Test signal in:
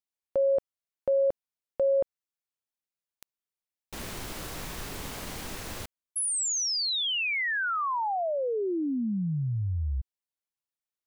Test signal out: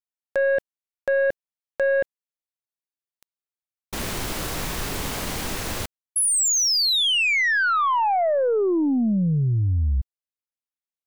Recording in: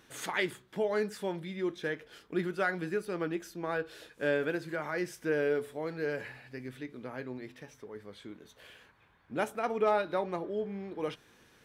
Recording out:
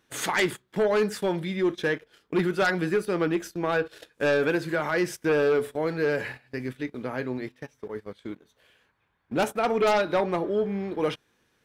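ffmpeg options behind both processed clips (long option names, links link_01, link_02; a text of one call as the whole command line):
ffmpeg -i in.wav -af "agate=range=-17dB:threshold=-52dB:ratio=16:release=40:detection=peak,aeval=exprs='0.141*(cos(1*acos(clip(val(0)/0.141,-1,1)))-cos(1*PI/2))+0.0562*(cos(5*acos(clip(val(0)/0.141,-1,1)))-cos(5*PI/2))+0.00398*(cos(6*acos(clip(val(0)/0.141,-1,1)))-cos(6*PI/2))+0.0112*(cos(7*acos(clip(val(0)/0.141,-1,1)))-cos(7*PI/2))+0.000891*(cos(8*acos(clip(val(0)/0.141,-1,1)))-cos(8*PI/2))':channel_layout=same,volume=2dB" out.wav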